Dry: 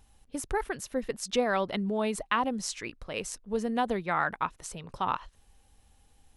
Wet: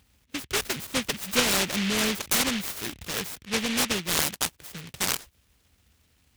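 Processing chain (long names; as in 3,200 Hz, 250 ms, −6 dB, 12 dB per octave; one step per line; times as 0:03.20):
0:00.61–0:03.45: converter with a step at zero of −38 dBFS
high-pass filter 61 Hz 24 dB per octave
high-shelf EQ 4,800 Hz −4.5 dB
short delay modulated by noise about 2,500 Hz, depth 0.42 ms
level +2.5 dB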